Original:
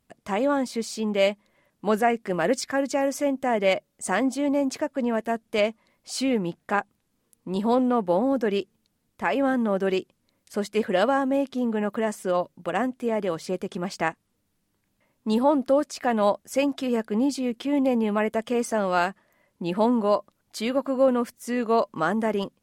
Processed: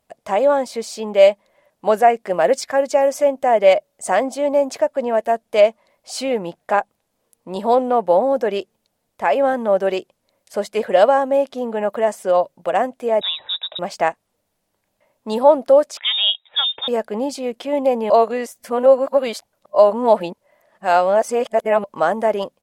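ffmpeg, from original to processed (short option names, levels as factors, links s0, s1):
-filter_complex "[0:a]asettb=1/sr,asplit=3[s0][s1][s2];[s0]atrim=end=13.214[s3];[s1]atrim=start=13.21:end=13.79,asetpts=PTS-STARTPTS,afade=t=in:d=0.004:c=qsin,afade=t=out:st=0.576:d=0.004:c=qsin,lowpass=f=3400:t=q:w=0.5098,lowpass=f=3400:t=q:w=0.6013,lowpass=f=3400:t=q:w=0.9,lowpass=f=3400:t=q:w=2.563,afreqshift=-4000[s4];[s2]atrim=start=13.786[s5];[s3][s4]acrossfade=d=0.004:c1=hsin:c2=qsin[s6];[s6][s5]acrossfade=d=0.004:c1=qsin:c2=hsin,asettb=1/sr,asplit=3[s7][s8][s9];[s7]atrim=end=15.974[s10];[s8]atrim=start=15.97:end=16.88,asetpts=PTS-STARTPTS,afade=t=in:d=0.004:c=qsin,afade=t=out:st=0.906:d=0.004:c=qsin,lowpass=f=3300:t=q:w=0.5098,lowpass=f=3300:t=q:w=0.6013,lowpass=f=3300:t=q:w=0.9,lowpass=f=3300:t=q:w=2.563,afreqshift=-3900[s11];[s9]atrim=start=16.876[s12];[s10][s11]acrossfade=d=0.004:c1=hsin:c2=qsin[s13];[s13][s12]acrossfade=d=0.004:c1=qsin:c2=hsin,asplit=3[s14][s15][s16];[s14]atrim=end=18.102[s17];[s15]atrim=start=18.098:end=21.842,asetpts=PTS-STARTPTS,areverse[s18];[s16]atrim=start=21.838[s19];[s17][s18]acrossfade=d=0.004:c1=hsin:c2=hsin[s20];[s20][s19]acrossfade=d=0.004:c1=hsin:c2=hsin,firequalizer=gain_entry='entry(280,0);entry(600,15);entry(1200,6)':delay=0.05:min_phase=1,volume=0.708"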